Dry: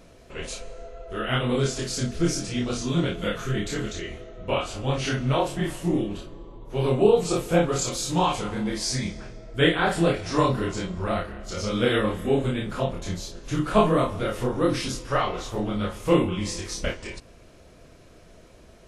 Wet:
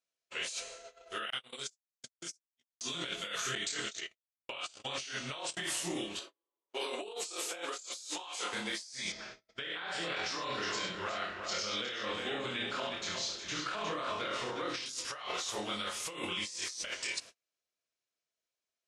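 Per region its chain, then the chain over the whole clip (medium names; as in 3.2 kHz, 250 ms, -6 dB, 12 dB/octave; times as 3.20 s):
1.30–2.81 s: gate -22 dBFS, range -52 dB + peaking EQ 8.4 kHz +9 dB 2 oct + compression 8:1, threshold -33 dBFS
3.55–5.57 s: elliptic low-pass 9.3 kHz + gate -33 dBFS, range -29 dB
6.19–8.53 s: high-pass 280 Hz 24 dB/octave + tape noise reduction on one side only decoder only
9.12–14.86 s: compression, threshold -23 dBFS + distance through air 140 m + multi-tap echo 71/361 ms -5.5/-7.5 dB
whole clip: frequency weighting ITU-R 468; gate -44 dBFS, range -38 dB; compressor with a negative ratio -32 dBFS, ratio -1; trim -7 dB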